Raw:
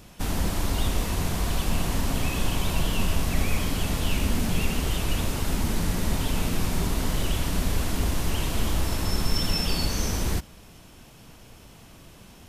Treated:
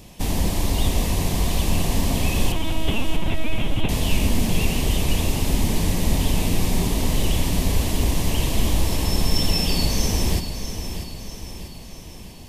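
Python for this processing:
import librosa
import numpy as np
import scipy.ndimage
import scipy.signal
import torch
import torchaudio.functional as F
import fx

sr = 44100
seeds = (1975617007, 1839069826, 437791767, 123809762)

y = fx.peak_eq(x, sr, hz=1400.0, db=-13.5, octaves=0.42)
y = fx.lpc_vocoder(y, sr, seeds[0], excitation='pitch_kept', order=10, at=(2.52, 3.89))
y = fx.echo_feedback(y, sr, ms=643, feedback_pct=52, wet_db=-9.5)
y = y * 10.0 ** (4.5 / 20.0)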